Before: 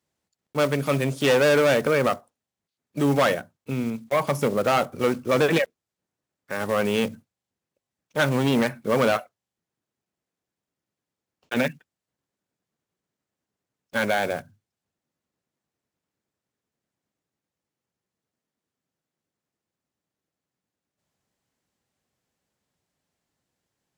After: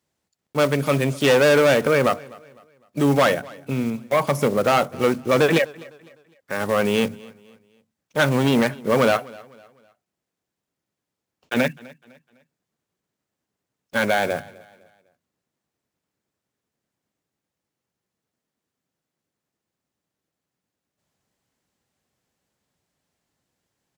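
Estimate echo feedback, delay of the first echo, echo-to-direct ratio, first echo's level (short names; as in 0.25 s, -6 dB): 38%, 0.253 s, -22.0 dB, -22.5 dB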